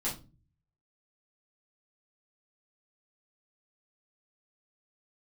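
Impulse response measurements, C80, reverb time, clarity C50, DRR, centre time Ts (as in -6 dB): 16.5 dB, 0.30 s, 9.0 dB, -7.5 dB, 24 ms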